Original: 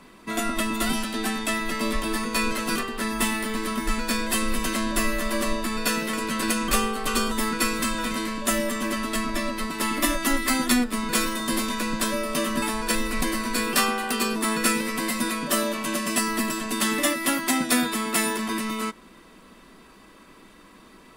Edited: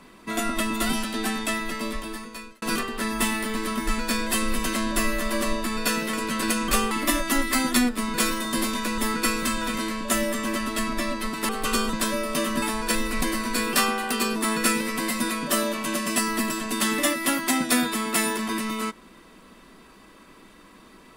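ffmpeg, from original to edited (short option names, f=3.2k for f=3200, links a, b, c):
-filter_complex "[0:a]asplit=6[a][b][c][d][e][f];[a]atrim=end=2.62,asetpts=PTS-STARTPTS,afade=t=out:st=1.41:d=1.21[g];[b]atrim=start=2.62:end=6.912,asetpts=PTS-STARTPTS,afade=t=in:d=0.004:c=hsin[h];[c]atrim=start=9.858:end=11.932[i];[d]atrim=start=7.348:end=9.862[j];[e]atrim=start=6.908:end=7.352[k];[f]atrim=start=11.928[l];[g][h]concat=n=2:v=0:a=1[m];[m][i]acrossfade=d=0.004:c1=hsin:c2=hsin[n];[n][j]acrossfade=d=0.004:c1=hsin:c2=hsin[o];[o][k]acrossfade=d=0.004:c1=hsin:c2=hsin[p];[p][l]acrossfade=d=0.004:c1=hsin:c2=hsin"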